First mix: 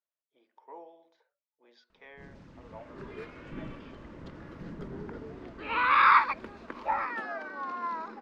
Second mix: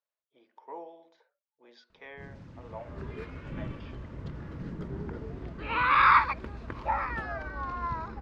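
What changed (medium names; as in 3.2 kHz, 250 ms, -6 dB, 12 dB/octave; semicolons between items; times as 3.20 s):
speech +4.5 dB; second sound: remove steep high-pass 200 Hz 48 dB/octave; master: add peaking EQ 100 Hz +9 dB 1.3 oct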